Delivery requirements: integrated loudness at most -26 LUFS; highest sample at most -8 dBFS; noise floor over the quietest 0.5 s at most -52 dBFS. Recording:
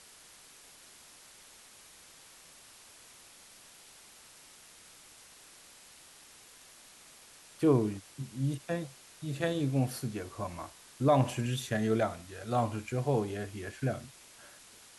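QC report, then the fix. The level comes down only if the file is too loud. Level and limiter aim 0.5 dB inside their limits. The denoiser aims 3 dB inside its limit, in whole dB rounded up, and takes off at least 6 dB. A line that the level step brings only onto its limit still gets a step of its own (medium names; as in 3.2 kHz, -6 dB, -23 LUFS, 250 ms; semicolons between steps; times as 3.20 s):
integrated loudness -32.5 LUFS: pass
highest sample -13.5 dBFS: pass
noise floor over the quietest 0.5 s -56 dBFS: pass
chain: none needed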